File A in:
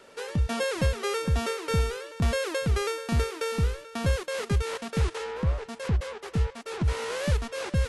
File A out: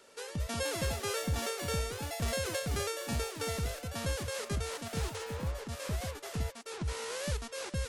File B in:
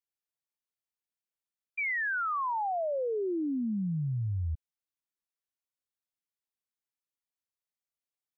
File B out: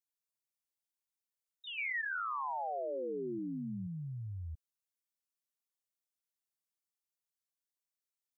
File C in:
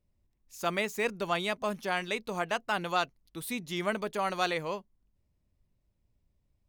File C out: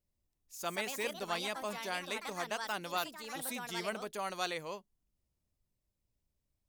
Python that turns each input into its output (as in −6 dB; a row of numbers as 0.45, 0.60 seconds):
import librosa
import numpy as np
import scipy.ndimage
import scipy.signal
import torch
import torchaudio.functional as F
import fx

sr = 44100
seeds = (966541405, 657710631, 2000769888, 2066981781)

y = fx.bass_treble(x, sr, bass_db=-3, treble_db=8)
y = fx.echo_pitch(y, sr, ms=260, semitones=4, count=2, db_per_echo=-6.0)
y = y * librosa.db_to_amplitude(-7.5)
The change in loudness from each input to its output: −7.0, −7.0, −5.5 LU